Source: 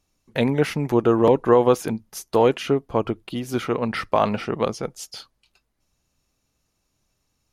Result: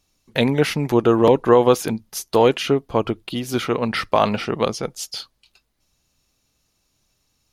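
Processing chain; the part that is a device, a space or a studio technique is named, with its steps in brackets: presence and air boost (bell 3900 Hz +5.5 dB 1.3 oct; high shelf 11000 Hz +6.5 dB); gain +2 dB

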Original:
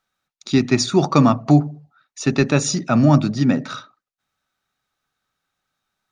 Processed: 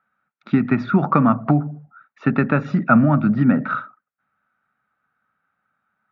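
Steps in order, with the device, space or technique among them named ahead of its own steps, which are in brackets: bass amplifier (compressor 6:1, threshold -15 dBFS, peak gain reduction 8 dB; speaker cabinet 89–2200 Hz, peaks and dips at 210 Hz +7 dB, 370 Hz -6 dB, 1400 Hz +10 dB); gain +2.5 dB

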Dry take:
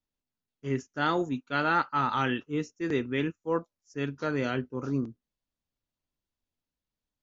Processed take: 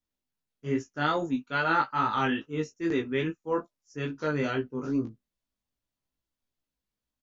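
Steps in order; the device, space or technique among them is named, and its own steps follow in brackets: double-tracked vocal (doubler 15 ms -10 dB; chorus 2.4 Hz, delay 18 ms, depth 2.2 ms); gain +3 dB

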